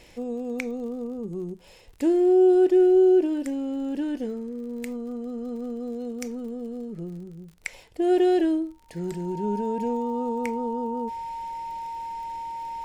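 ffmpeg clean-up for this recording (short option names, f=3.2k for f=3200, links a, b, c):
-af "adeclick=t=4,bandreject=f=920:w=30"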